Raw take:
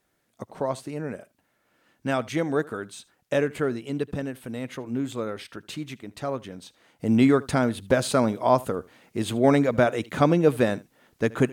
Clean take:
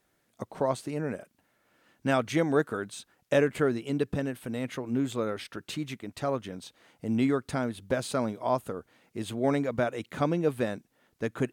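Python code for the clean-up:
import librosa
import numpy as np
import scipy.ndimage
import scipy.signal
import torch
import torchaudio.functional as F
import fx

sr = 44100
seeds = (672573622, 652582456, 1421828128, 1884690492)

y = fx.fix_echo_inverse(x, sr, delay_ms=77, level_db=-22.0)
y = fx.fix_level(y, sr, at_s=7.0, step_db=-7.5)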